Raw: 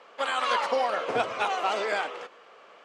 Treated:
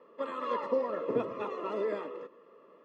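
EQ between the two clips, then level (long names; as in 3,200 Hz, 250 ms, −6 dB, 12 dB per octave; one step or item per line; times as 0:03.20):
moving average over 58 samples
high-pass filter 170 Hz 12 dB per octave
+6.5 dB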